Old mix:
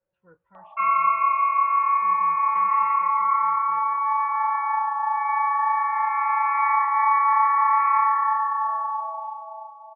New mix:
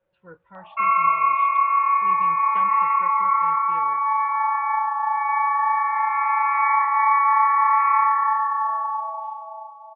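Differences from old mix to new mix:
speech +9.0 dB
master: remove high-frequency loss of the air 290 metres

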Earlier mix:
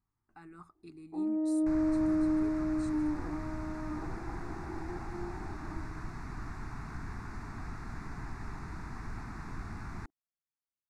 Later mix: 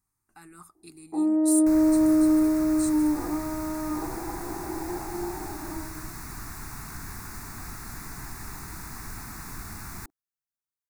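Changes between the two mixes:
first sound +8.0 dB
master: remove head-to-tape spacing loss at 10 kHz 27 dB

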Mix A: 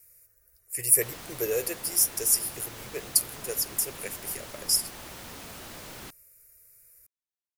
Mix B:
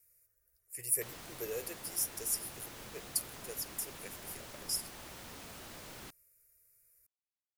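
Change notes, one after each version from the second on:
speech −11.5 dB
background −6.0 dB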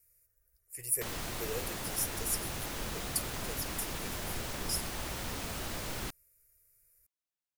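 background +9.5 dB
master: add low-shelf EQ 73 Hz +11 dB

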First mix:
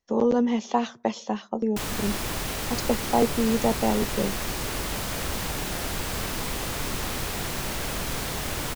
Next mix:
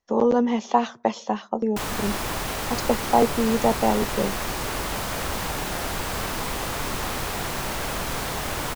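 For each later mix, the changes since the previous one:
master: add parametric band 950 Hz +5.5 dB 1.9 octaves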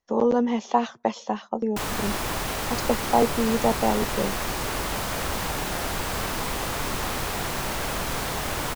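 speech: send −9.5 dB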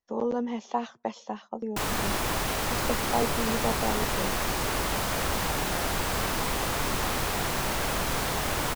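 speech −7.5 dB

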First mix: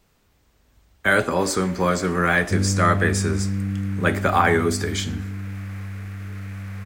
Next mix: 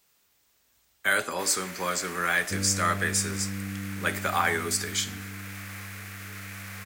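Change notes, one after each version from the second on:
speech −7.5 dB
master: add spectral tilt +3.5 dB per octave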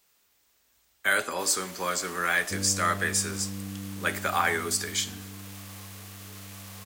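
first sound: add flat-topped bell 1,800 Hz −11.5 dB 1.1 octaves
master: add parametric band 130 Hz −4.5 dB 1.2 octaves

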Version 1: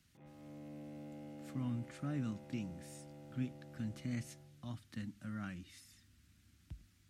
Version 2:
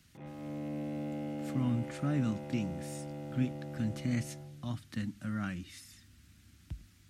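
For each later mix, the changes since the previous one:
speech +7.5 dB
background +12.0 dB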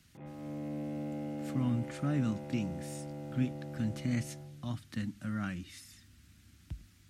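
background: add high-frequency loss of the air 240 metres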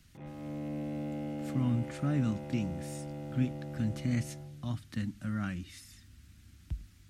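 background: remove high-frequency loss of the air 240 metres
master: remove high-pass filter 110 Hz 6 dB per octave

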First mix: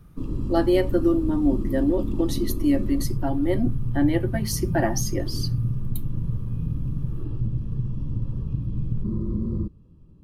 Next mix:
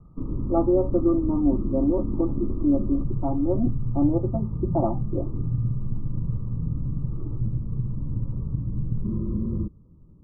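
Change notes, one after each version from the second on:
master: add Chebyshev low-pass filter 1,300 Hz, order 10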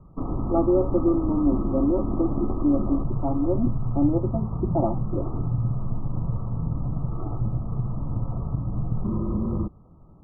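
background: remove moving average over 60 samples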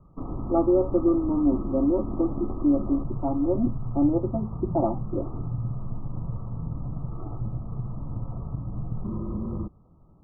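background −5.0 dB

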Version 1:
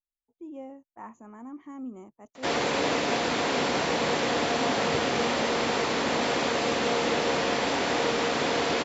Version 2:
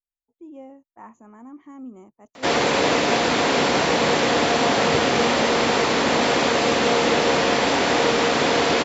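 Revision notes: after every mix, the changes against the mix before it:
background +7.0 dB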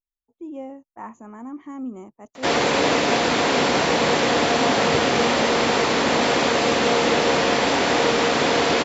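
speech +6.5 dB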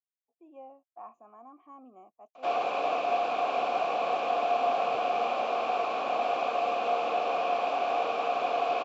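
master: add formant filter a

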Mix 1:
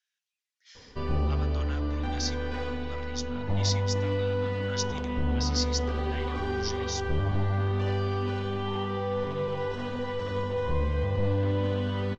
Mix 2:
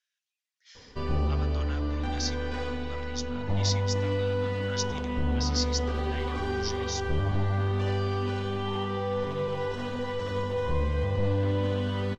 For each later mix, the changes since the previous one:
background: remove high-frequency loss of the air 62 metres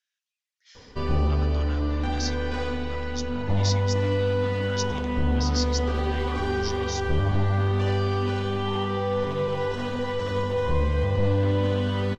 background +4.0 dB

